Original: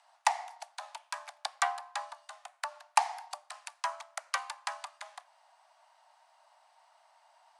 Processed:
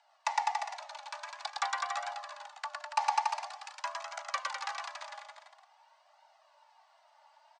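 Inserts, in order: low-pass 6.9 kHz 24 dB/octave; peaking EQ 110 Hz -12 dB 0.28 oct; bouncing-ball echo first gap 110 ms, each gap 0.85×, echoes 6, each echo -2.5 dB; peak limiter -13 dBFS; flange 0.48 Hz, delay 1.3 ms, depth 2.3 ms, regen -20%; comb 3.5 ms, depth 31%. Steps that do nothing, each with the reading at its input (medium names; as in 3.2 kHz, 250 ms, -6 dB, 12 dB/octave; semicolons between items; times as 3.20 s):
peaking EQ 110 Hz: input has nothing below 510 Hz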